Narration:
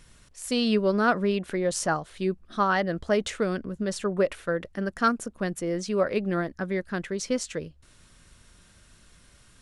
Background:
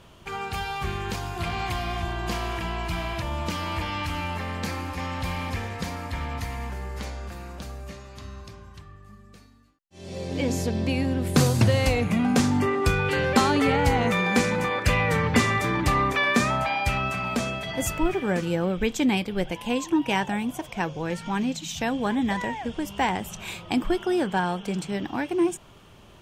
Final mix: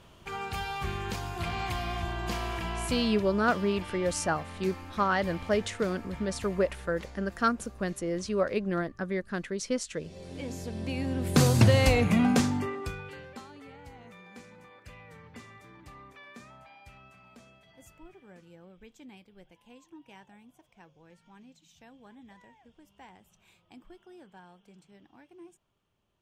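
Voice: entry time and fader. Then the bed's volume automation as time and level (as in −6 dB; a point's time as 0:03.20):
2.40 s, −3.0 dB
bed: 0:02.83 −4 dB
0:03.27 −12 dB
0:10.60 −12 dB
0:11.57 0 dB
0:12.24 0 dB
0:13.48 −27.5 dB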